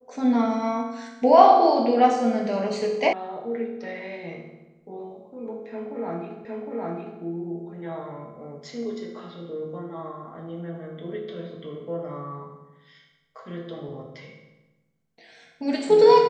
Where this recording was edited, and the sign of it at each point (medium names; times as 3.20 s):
3.13 s: sound stops dead
6.45 s: repeat of the last 0.76 s